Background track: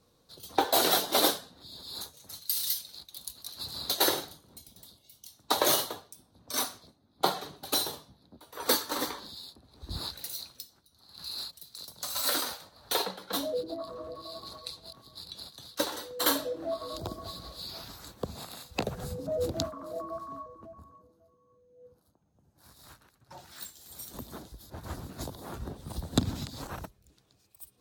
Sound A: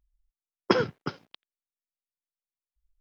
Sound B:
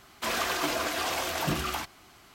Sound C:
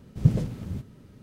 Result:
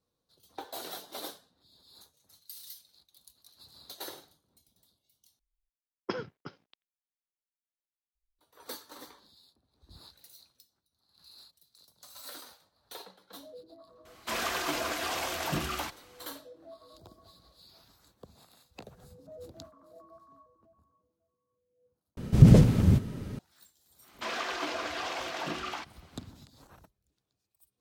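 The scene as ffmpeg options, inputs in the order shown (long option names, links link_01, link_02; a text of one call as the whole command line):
ffmpeg -i bed.wav -i cue0.wav -i cue1.wav -i cue2.wav -filter_complex "[2:a]asplit=2[link_01][link_02];[0:a]volume=-16.5dB[link_03];[3:a]alimiter=level_in=15.5dB:limit=-1dB:release=50:level=0:latency=1[link_04];[link_02]acrossover=split=190 6200:gain=0.0891 1 0.126[link_05][link_06][link_07];[link_05][link_06][link_07]amix=inputs=3:normalize=0[link_08];[link_03]asplit=3[link_09][link_10][link_11];[link_09]atrim=end=5.394[link_12];[1:a]atrim=end=3,asetpts=PTS-STARTPTS,volume=-12dB[link_13];[link_10]atrim=start=8.386:end=22.174[link_14];[link_04]atrim=end=1.22,asetpts=PTS-STARTPTS,volume=-3.5dB[link_15];[link_11]atrim=start=23.386[link_16];[link_01]atrim=end=2.34,asetpts=PTS-STARTPTS,volume=-3dB,afade=type=in:duration=0.004:curve=hsin,afade=type=out:start_time=2.336:duration=0.004:curve=hsin,adelay=14050[link_17];[link_08]atrim=end=2.34,asetpts=PTS-STARTPTS,volume=-4.5dB,afade=type=in:duration=0.1,afade=type=out:start_time=2.24:duration=0.1,adelay=23990[link_18];[link_12][link_13]acrossfade=duration=0.004:curve1=hsin:curve2=hsin[link_19];[link_19][link_14]acrossfade=duration=0.004:curve1=hsin:curve2=hsin[link_20];[link_20][link_15]acrossfade=duration=0.004:curve1=hsin:curve2=hsin[link_21];[link_21][link_16]acrossfade=duration=0.004:curve1=hsin:curve2=hsin[link_22];[link_22][link_17][link_18]amix=inputs=3:normalize=0" out.wav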